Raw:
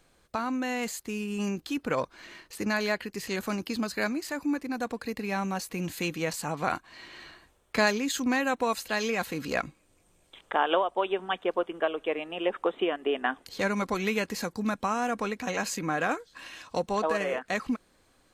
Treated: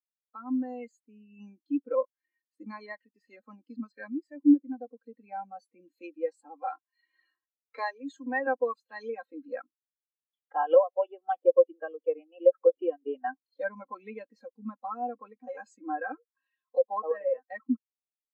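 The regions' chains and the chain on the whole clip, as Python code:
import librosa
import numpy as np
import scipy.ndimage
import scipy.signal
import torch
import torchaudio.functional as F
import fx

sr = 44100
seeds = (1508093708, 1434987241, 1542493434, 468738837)

y = fx.chain(x, sr, fx.block_float(bits=5),
    fx.highpass(hz=300.0, slope=24),
    fx.band_squash(depth_pct=40), at=(6.62, 8.47))
y = fx.chain(y, sr, fx.low_shelf(hz=230.0, db=4.5),
    fx.band_squash(depth_pct=70), at=(11.27, 11.72))
y = scipy.signal.sosfilt(scipy.signal.butter(4, 250.0, 'highpass', fs=sr, output='sos'), y)
y = y + 0.59 * np.pad(y, (int(3.8 * sr / 1000.0), 0))[:len(y)]
y = fx.spectral_expand(y, sr, expansion=2.5)
y = y * 10.0 ** (2.0 / 20.0)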